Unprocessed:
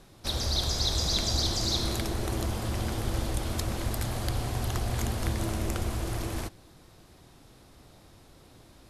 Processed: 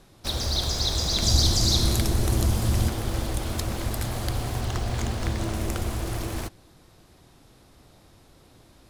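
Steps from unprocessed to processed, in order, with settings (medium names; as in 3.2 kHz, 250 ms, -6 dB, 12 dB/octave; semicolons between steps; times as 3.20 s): 1.22–2.89 s: tone controls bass +7 dB, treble +6 dB; 4.61–5.54 s: low-pass 8 kHz 12 dB/octave; in parallel at -10.5 dB: bit crusher 6-bit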